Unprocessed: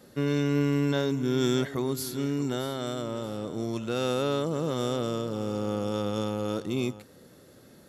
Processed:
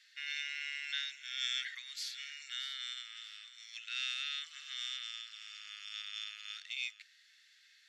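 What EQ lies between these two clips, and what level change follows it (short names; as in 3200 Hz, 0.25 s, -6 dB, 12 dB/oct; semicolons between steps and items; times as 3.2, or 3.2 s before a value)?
steep high-pass 1800 Hz 48 dB/oct; air absorption 150 m; +5.0 dB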